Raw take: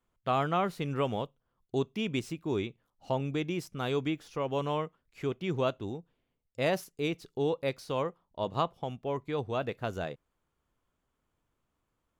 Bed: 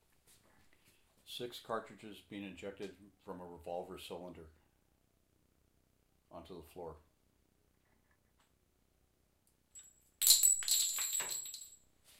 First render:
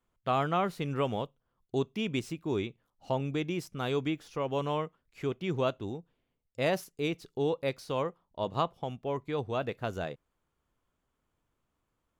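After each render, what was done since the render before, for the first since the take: nothing audible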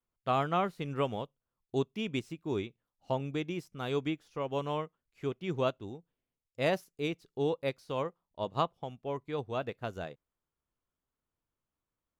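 upward expander 1.5:1, over -47 dBFS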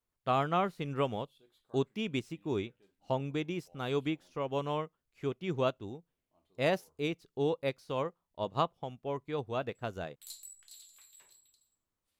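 add bed -21.5 dB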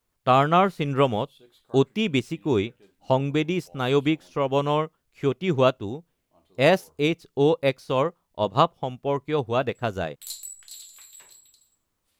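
gain +11 dB

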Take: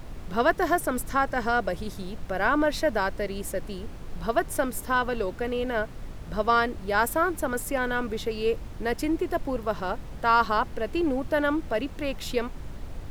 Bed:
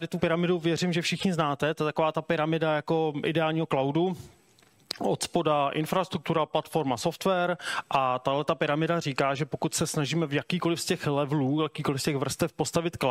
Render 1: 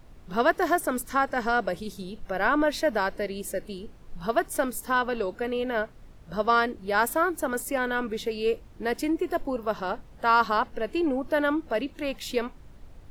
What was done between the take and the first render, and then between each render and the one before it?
noise print and reduce 11 dB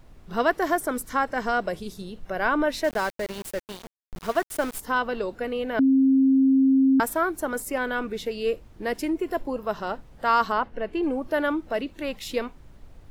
2.84–4.8 sample gate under -33 dBFS; 5.79–7 bleep 267 Hz -15 dBFS; 10.52–11.03 tone controls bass 0 dB, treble -11 dB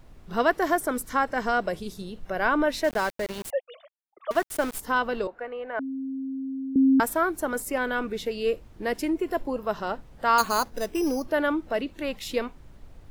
3.5–4.31 sine-wave speech; 5.27–6.76 three-band isolator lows -17 dB, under 510 Hz, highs -22 dB, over 2100 Hz; 10.38–11.26 careless resampling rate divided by 8×, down none, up hold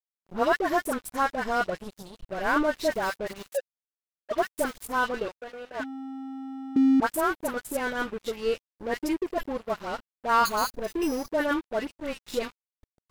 dispersion highs, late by 73 ms, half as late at 1200 Hz; crossover distortion -37.5 dBFS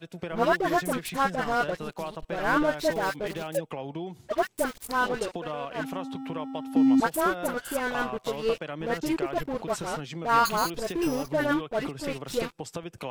add bed -10 dB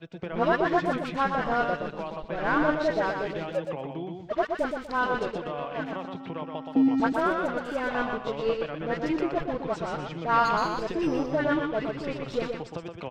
air absorption 170 m; feedback echo 0.122 s, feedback 26%, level -5 dB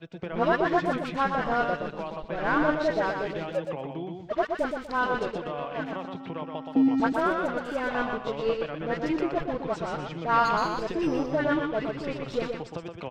nothing audible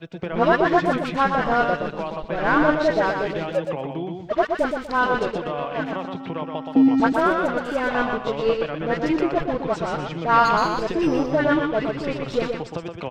gain +6 dB

